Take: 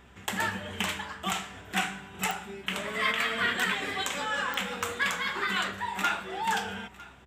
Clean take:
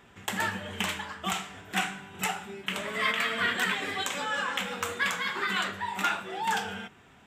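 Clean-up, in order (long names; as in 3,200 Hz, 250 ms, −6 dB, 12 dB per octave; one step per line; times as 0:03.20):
click removal
hum removal 64.3 Hz, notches 4
echo removal 954 ms −20 dB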